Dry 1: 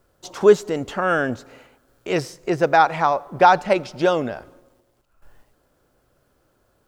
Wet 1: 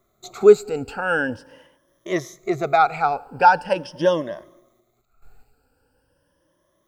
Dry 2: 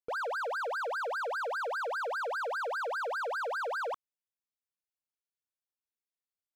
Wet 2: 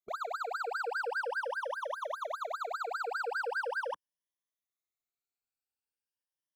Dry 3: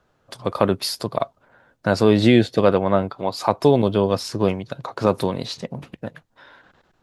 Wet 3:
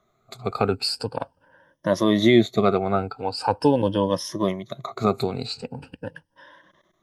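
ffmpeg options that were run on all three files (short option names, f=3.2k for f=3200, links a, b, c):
-af "afftfilt=real='re*pow(10,17/40*sin(2*PI*(1.2*log(max(b,1)*sr/1024/100)/log(2)-(0.42)*(pts-256)/sr)))':imag='im*pow(10,17/40*sin(2*PI*(1.2*log(max(b,1)*sr/1024/100)/log(2)-(0.42)*(pts-256)/sr)))':win_size=1024:overlap=0.75,volume=-5.5dB"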